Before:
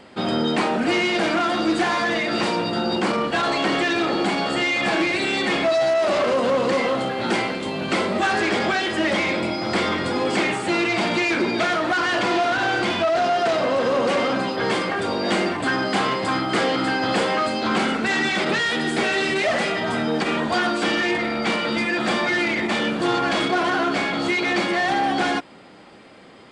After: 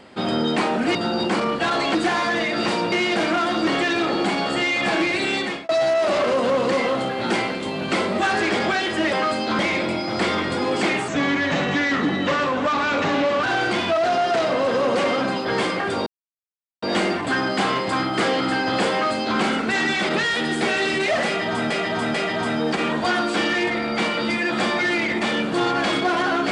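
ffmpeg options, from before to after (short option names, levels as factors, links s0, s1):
-filter_complex "[0:a]asplit=13[s0][s1][s2][s3][s4][s5][s6][s7][s8][s9][s10][s11][s12];[s0]atrim=end=0.952[s13];[s1]atrim=start=2.668:end=3.672[s14];[s2]atrim=start=1.698:end=2.672[s15];[s3]atrim=start=0.948:end=1.702[s16];[s4]atrim=start=3.668:end=5.69,asetpts=PTS-STARTPTS,afade=t=out:st=1.682:d=0.34[s17];[s5]atrim=start=5.69:end=9.132,asetpts=PTS-STARTPTS,afade=t=in:d=0.004:c=hsin[s18];[s6]atrim=start=17.278:end=17.742[s19];[s7]atrim=start=9.128:end=10.624[s20];[s8]atrim=start=10.62:end=12.55,asetpts=PTS-STARTPTS,asetrate=36162,aresample=44100,atrim=end_sample=103796,asetpts=PTS-STARTPTS[s21];[s9]atrim=start=12.546:end=15.18,asetpts=PTS-STARTPTS,afade=t=out:st=2.63:d=0.004:c=hsin,apad=pad_dur=0.76[s22];[s10]atrim=start=15.18:end=20.062,asetpts=PTS-STARTPTS,afade=t=in:d=0.004:c=hsin[s23];[s11]atrim=start=19.618:end=20.062[s24];[s12]atrim=start=19.618[s25];[s13][s14]acrossfade=d=0.004:c1=hsin:c2=hsin[s26];[s26][s15]acrossfade=d=0.004:c1=hsin:c2=hsin[s27];[s27][s16]acrossfade=d=0.004:c1=hsin:c2=hsin[s28];[s17][s18]concat=n=2:v=0:a=1[s29];[s28][s29]acrossfade=d=0.004:c1=hsin:c2=hsin[s30];[s30][s19]acrossfade=d=0.004:c1=hsin:c2=hsin[s31];[s31][s20]acrossfade=d=0.004:c1=hsin:c2=hsin[s32];[s32][s21]acrossfade=d=0.004:c1=hsin:c2=hsin[s33];[s22][s23]concat=n=2:v=0:a=1[s34];[s33][s34]acrossfade=d=0.004:c1=hsin:c2=hsin[s35];[s35][s24]acrossfade=d=0.004:c1=hsin:c2=hsin[s36];[s36][s25]acrossfade=d=0.004:c1=hsin:c2=hsin"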